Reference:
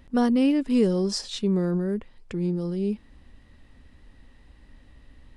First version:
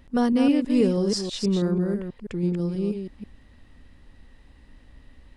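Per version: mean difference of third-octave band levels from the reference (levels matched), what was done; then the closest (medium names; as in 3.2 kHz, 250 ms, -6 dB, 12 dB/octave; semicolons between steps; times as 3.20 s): 3.0 dB: chunks repeated in reverse 162 ms, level -6 dB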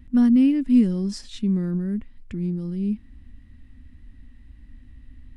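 5.0 dB: FFT filter 100 Hz 0 dB, 150 Hz -8 dB, 250 Hz 0 dB, 430 Hz -19 dB, 950 Hz -17 dB, 2 kHz -9 dB, 4.8 kHz -15 dB, 11 kHz -11 dB; trim +6.5 dB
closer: first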